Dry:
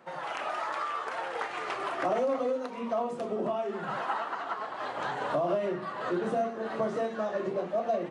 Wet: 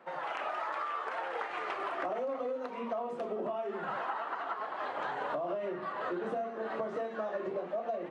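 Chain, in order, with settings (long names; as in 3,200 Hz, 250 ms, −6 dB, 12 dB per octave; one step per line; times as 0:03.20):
high-pass filter 110 Hz
bass and treble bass −7 dB, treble −11 dB
downward compressor, threshold −32 dBFS, peak gain reduction 8 dB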